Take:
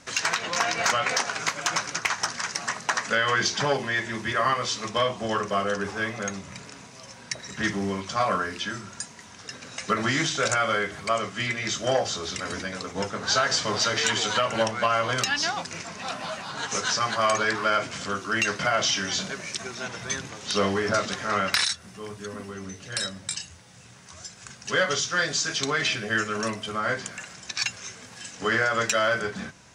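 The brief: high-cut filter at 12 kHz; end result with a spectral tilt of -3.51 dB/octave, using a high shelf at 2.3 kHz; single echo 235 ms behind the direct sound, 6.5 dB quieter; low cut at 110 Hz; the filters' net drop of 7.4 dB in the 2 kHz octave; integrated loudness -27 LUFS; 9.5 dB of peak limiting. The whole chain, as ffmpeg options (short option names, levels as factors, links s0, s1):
-af "highpass=110,lowpass=12000,equalizer=f=2000:t=o:g=-6.5,highshelf=f=2300:g=-7.5,alimiter=limit=0.075:level=0:latency=1,aecho=1:1:235:0.473,volume=1.88"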